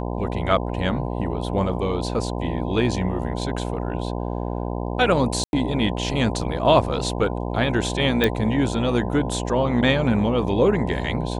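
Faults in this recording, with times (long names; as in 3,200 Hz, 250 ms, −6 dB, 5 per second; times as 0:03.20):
mains buzz 60 Hz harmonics 17 −27 dBFS
0:05.44–0:05.53: drop-out 91 ms
0:08.24: click −6 dBFS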